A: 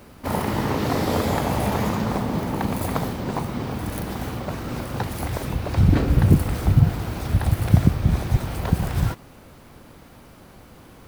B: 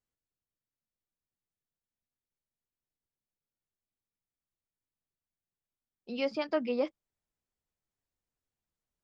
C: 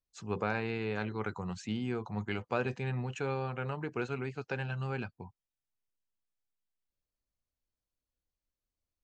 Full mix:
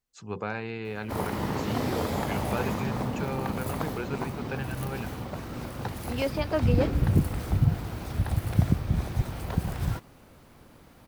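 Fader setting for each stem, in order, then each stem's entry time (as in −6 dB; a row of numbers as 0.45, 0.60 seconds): −7.0, +2.5, 0.0 decibels; 0.85, 0.00, 0.00 seconds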